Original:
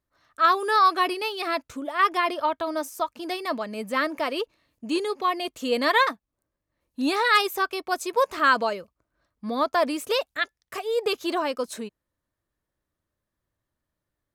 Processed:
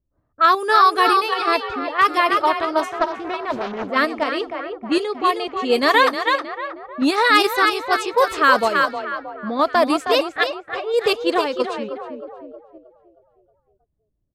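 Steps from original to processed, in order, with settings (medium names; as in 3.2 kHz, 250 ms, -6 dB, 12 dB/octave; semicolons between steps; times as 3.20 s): bass shelf 77 Hz +10 dB; frequency-shifting echo 315 ms, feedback 52%, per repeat +30 Hz, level -5.5 dB; level-controlled noise filter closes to 440 Hz, open at -19 dBFS; in parallel at -2 dB: level held to a coarse grid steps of 24 dB; 2.93–3.90 s: on the sum: loudspeaker Doppler distortion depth 0.43 ms; trim +2 dB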